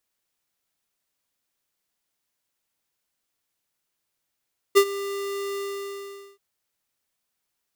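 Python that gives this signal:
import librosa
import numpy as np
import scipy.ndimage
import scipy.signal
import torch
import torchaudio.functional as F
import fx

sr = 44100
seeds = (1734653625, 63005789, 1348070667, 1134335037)

y = fx.adsr_tone(sr, wave='square', hz=398.0, attack_ms=24.0, decay_ms=69.0, sustain_db=-17.5, held_s=0.81, release_ms=820.0, level_db=-12.5)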